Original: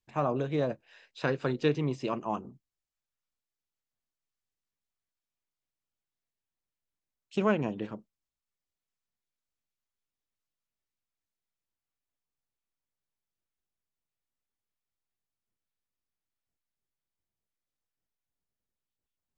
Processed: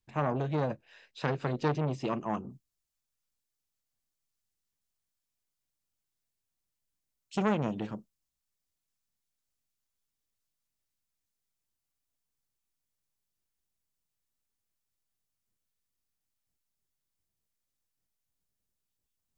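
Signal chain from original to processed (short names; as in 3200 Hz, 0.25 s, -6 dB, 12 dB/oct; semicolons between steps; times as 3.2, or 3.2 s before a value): tone controls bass +5 dB, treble 0 dB, from 2.49 s treble +7 dB; core saturation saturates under 920 Hz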